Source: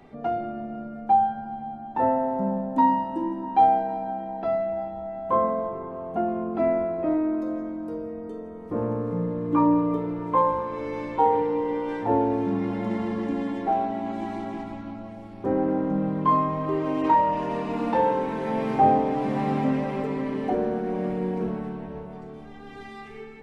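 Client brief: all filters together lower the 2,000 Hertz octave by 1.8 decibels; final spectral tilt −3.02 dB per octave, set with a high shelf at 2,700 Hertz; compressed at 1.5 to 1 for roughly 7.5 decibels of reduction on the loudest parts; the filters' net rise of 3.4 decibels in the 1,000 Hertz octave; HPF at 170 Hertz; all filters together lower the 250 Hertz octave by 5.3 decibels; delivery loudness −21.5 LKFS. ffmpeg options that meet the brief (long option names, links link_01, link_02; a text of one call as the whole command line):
ffmpeg -i in.wav -af "highpass=170,equalizer=frequency=250:width_type=o:gain=-6,equalizer=frequency=1000:width_type=o:gain=5,equalizer=frequency=2000:width_type=o:gain=-5.5,highshelf=frequency=2700:gain=4.5,acompressor=threshold=-33dB:ratio=1.5,volume=8.5dB" out.wav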